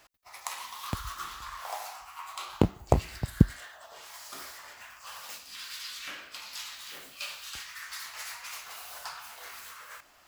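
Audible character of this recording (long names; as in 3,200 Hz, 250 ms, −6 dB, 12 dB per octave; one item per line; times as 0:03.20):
background noise floor −56 dBFS
spectral slope −5.0 dB per octave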